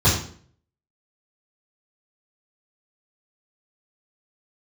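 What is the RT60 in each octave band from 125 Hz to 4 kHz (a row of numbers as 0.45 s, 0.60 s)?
0.60 s, 0.60 s, 0.55 s, 0.50 s, 0.45 s, 0.45 s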